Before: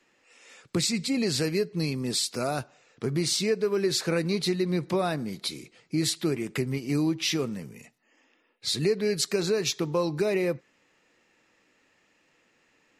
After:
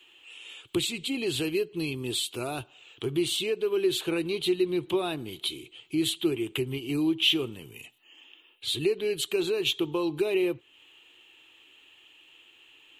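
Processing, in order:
drawn EQ curve 110 Hz 0 dB, 200 Hz −14 dB, 350 Hz +4 dB, 540 Hz −9 dB, 870 Hz −2 dB, 2,000 Hz −9 dB, 3,100 Hz +14 dB, 5,100 Hz −17 dB, 7,900 Hz −4 dB, 13,000 Hz +3 dB
one half of a high-frequency compander encoder only

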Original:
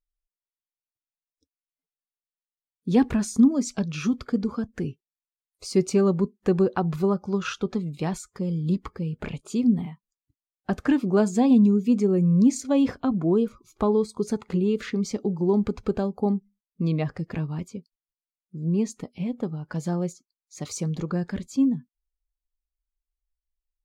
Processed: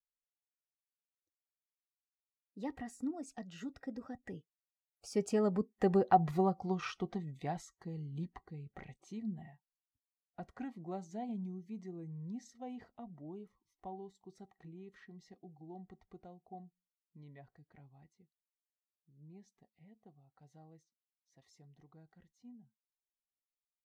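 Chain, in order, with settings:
source passing by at 0:06.12, 37 m/s, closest 29 metres
hollow resonant body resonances 750/1,900 Hz, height 15 dB, ringing for 35 ms
level −8.5 dB

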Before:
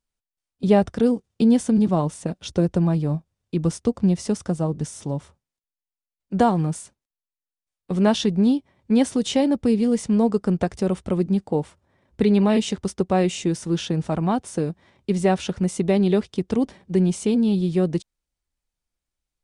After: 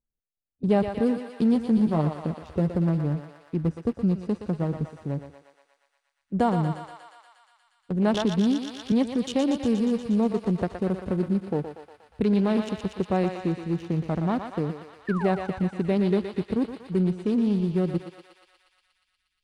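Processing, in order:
adaptive Wiener filter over 41 samples
in parallel at −2.5 dB: brickwall limiter −17.5 dBFS, peak gain reduction 11 dB
0:01.54–0:02.75: on the sum: double-tracking delay 13 ms −6.5 dB
0:15.07–0:15.31: sound drawn into the spectrogram fall 570–1,900 Hz −29 dBFS
on a send: feedback echo with a high-pass in the loop 119 ms, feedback 80%, high-pass 670 Hz, level −5 dB
0:08.14–0:08.92: on the sum: multiband upward and downward compressor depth 70%
level −7 dB

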